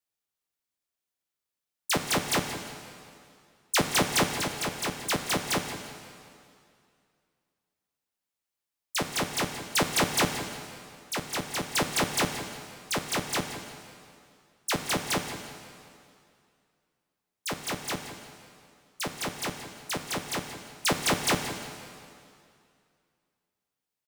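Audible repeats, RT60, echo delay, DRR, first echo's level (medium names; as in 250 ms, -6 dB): 2, 2.4 s, 177 ms, 5.5 dB, -13.0 dB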